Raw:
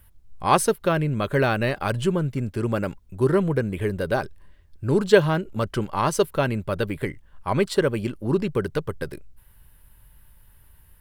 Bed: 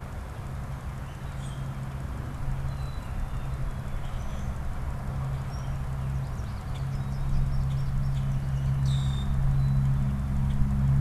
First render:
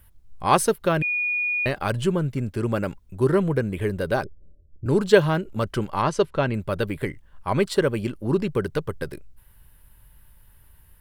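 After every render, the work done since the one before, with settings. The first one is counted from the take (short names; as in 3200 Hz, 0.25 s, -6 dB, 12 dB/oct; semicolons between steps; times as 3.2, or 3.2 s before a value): 1.02–1.66 bleep 2450 Hz -21.5 dBFS; 4.24–4.86 steep low-pass 620 Hz 96 dB/oct; 6.02–6.54 air absorption 89 m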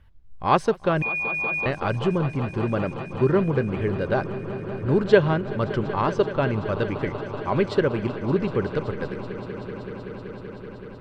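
air absorption 170 m; swelling echo 0.19 s, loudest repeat 5, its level -17 dB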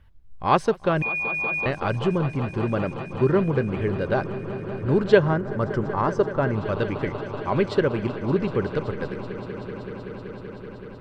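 5.19–6.55 band shelf 3200 Hz -9 dB 1.1 oct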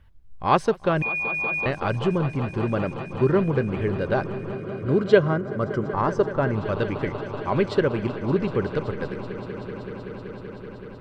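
4.55–5.94 notch comb 890 Hz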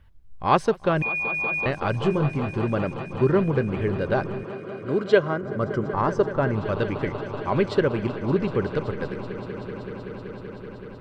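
1.97–2.57 doubler 20 ms -7.5 dB; 4.43–5.43 HPF 310 Hz 6 dB/oct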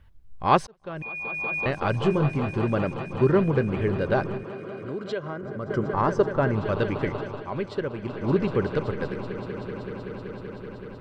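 0.67–1.82 fade in; 4.37–5.7 compressor 2.5:1, threshold -32 dBFS; 7.21–8.28 dip -8 dB, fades 0.26 s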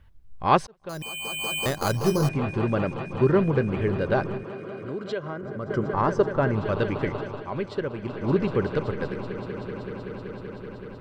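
0.89–2.29 careless resampling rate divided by 8×, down filtered, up hold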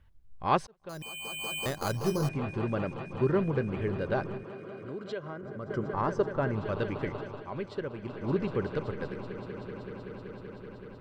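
gain -6.5 dB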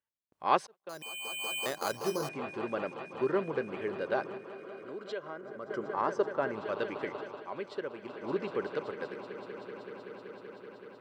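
gate with hold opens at -41 dBFS; HPF 350 Hz 12 dB/oct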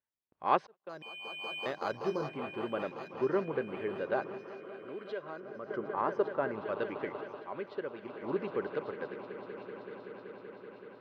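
air absorption 260 m; thin delay 1.161 s, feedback 46%, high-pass 2400 Hz, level -10 dB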